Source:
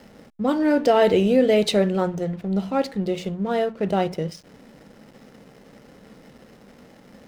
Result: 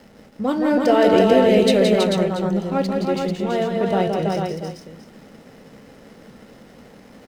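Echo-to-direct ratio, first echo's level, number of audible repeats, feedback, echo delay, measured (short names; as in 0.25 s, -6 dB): 1.0 dB, -5.0 dB, 4, no steady repeat, 0.169 s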